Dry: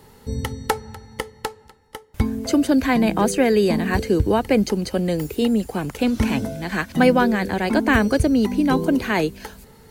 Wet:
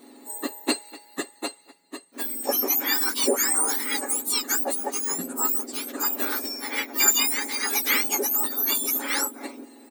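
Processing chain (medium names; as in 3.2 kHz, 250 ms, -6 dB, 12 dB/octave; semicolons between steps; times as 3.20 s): spectrum inverted on a logarithmic axis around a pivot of 1.9 kHz; comb 7.2 ms, depth 45%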